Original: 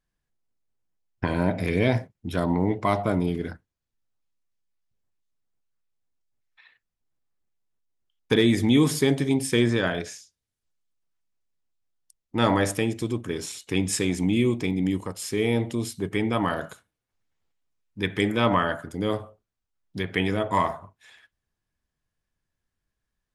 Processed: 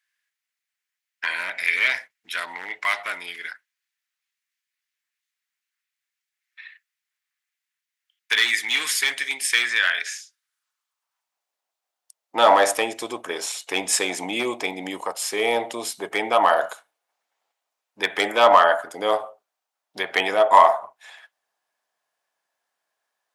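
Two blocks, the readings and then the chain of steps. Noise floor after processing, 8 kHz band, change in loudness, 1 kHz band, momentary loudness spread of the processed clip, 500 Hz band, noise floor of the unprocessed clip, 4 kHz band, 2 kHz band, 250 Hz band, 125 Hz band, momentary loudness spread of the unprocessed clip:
below −85 dBFS, +7.0 dB, +3.5 dB, +9.5 dB, 15 LU, +3.5 dB, −84 dBFS, +7.0 dB, +9.5 dB, −12.0 dB, below −20 dB, 11 LU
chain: gain into a clipping stage and back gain 14 dB
high-pass filter sweep 1,900 Hz → 710 Hz, 0:09.99–0:11.51
level +6.5 dB

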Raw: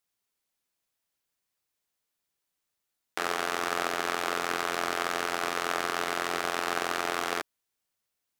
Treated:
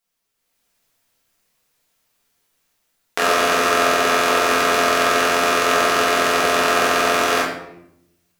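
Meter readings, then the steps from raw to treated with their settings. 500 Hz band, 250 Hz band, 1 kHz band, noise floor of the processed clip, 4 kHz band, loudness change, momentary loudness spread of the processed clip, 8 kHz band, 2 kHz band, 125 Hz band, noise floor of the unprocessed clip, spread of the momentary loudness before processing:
+15.5 dB, +13.0 dB, +13.0 dB, −73 dBFS, +13.0 dB, +13.5 dB, 3 LU, +13.5 dB, +13.0 dB, +12.5 dB, −83 dBFS, 3 LU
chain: automatic gain control gain up to 9 dB
rectangular room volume 180 cubic metres, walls mixed, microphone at 1.6 metres
level +1.5 dB

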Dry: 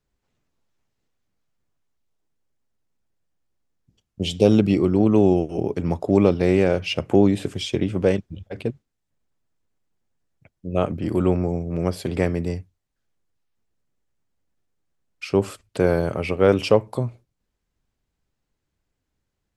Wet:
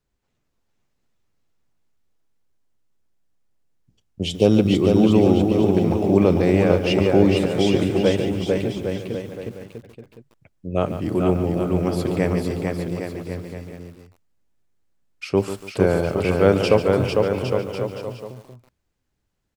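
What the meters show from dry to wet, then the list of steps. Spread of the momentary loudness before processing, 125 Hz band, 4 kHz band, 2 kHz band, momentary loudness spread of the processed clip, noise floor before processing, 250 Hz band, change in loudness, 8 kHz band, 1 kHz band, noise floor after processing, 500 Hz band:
13 LU, +2.5 dB, +2.5 dB, +2.5 dB, 16 LU, −79 dBFS, +2.5 dB, +1.5 dB, +2.5 dB, +2.5 dB, −74 dBFS, +2.5 dB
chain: bouncing-ball delay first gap 450 ms, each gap 0.8×, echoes 5
feedback echo at a low word length 143 ms, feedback 35%, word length 7 bits, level −11 dB

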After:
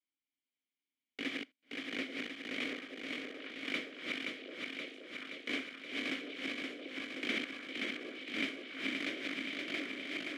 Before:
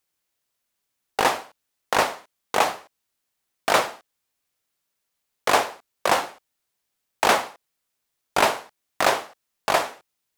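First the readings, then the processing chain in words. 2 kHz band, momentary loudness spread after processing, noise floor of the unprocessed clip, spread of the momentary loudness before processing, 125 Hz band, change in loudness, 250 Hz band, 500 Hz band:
−10.0 dB, 6 LU, −79 dBFS, 12 LU, −15.5 dB, −16.0 dB, −3.0 dB, −19.5 dB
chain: feedback delay that plays each chunk backwards 262 ms, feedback 82%, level −2 dB
formant filter i
echo through a band-pass that steps 738 ms, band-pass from 460 Hz, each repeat 1.4 octaves, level −2 dB
level −2 dB

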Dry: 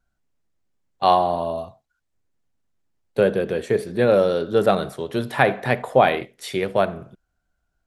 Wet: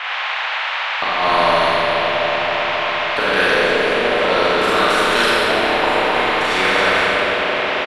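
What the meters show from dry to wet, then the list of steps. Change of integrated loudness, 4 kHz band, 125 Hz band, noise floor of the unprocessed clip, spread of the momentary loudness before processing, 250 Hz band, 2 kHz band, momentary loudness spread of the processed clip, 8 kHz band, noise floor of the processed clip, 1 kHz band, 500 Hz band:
+5.0 dB, +16.5 dB, −3.5 dB, −75 dBFS, 11 LU, +1.5 dB, +14.0 dB, 5 LU, can't be measured, −22 dBFS, +6.5 dB, +2.5 dB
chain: high-pass filter 210 Hz 24 dB per octave
first difference
notch filter 790 Hz, Q 14
comb filter 6.6 ms, depth 42%
leveller curve on the samples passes 2
compressor whose output falls as the input rises −34 dBFS, ratio −0.5
delay that swaps between a low-pass and a high-pass 135 ms, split 2,200 Hz, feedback 88%, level −8.5 dB
auto-filter low-pass saw up 0.57 Hz 550–1,800 Hz
noise in a band 790–2,700 Hz −50 dBFS
four-comb reverb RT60 1.9 s, combs from 29 ms, DRR −7.5 dB
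every bin compressed towards the loudest bin 2 to 1
level +8.5 dB

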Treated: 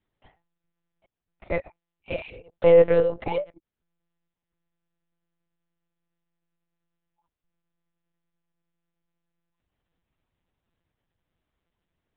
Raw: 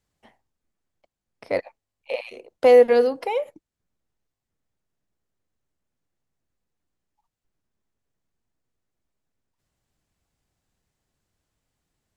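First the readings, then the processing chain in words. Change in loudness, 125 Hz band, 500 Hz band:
−2.0 dB, can't be measured, −2.0 dB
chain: one-pitch LPC vocoder at 8 kHz 170 Hz
level −2 dB

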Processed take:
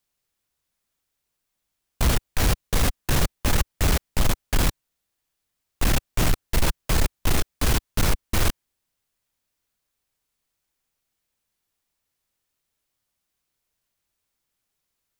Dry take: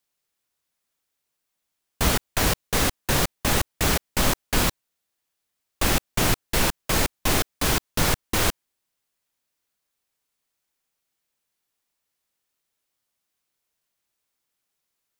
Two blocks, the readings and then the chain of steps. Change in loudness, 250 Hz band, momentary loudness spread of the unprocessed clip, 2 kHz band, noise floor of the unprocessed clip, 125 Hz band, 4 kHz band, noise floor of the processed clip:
−1.5 dB, −1.5 dB, 1 LU, −3.5 dB, −80 dBFS, +3.0 dB, −3.5 dB, −80 dBFS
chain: low-shelf EQ 120 Hz +11.5 dB
soft clipping −14 dBFS, distortion −11 dB

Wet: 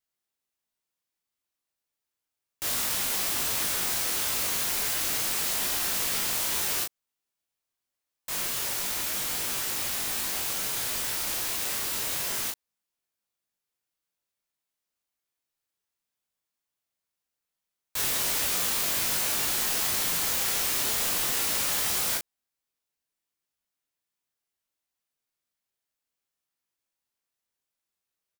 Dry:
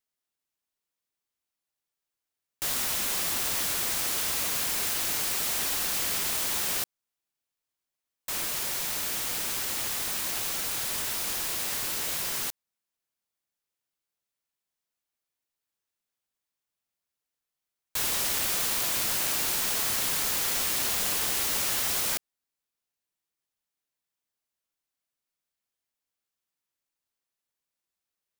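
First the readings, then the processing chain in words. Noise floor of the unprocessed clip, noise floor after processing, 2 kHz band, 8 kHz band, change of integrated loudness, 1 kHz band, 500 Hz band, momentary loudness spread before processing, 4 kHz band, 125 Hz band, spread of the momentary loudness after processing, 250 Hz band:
below −85 dBFS, below −85 dBFS, +0.5 dB, +0.5 dB, +0.5 dB, +0.5 dB, +1.0 dB, 4 LU, +0.5 dB, +0.5 dB, 4 LU, +0.5 dB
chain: ambience of single reflections 21 ms −3.5 dB, 37 ms −4 dB
level −2 dB

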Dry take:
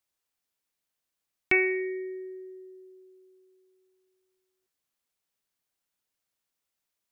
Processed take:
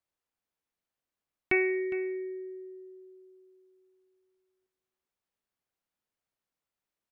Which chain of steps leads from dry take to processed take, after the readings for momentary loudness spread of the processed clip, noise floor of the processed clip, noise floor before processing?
21 LU, below −85 dBFS, −85 dBFS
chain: high-shelf EQ 2,700 Hz −11.5 dB
single-tap delay 409 ms −15 dB

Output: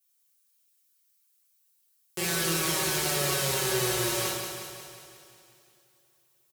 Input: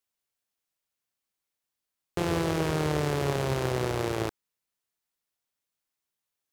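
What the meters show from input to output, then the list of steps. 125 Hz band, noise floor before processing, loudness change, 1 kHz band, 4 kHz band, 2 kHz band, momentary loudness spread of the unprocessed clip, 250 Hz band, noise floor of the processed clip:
−5.5 dB, below −85 dBFS, +2.0 dB, −1.0 dB, +9.5 dB, +4.5 dB, 5 LU, −4.0 dB, −69 dBFS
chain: high-pass filter 53 Hz
first-order pre-emphasis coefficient 0.9
comb filter 5.4 ms, depth 80%
repeating echo 181 ms, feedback 59%, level −7 dB
coupled-rooms reverb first 0.59 s, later 3.7 s, from −22 dB, DRR −5 dB
level +5.5 dB

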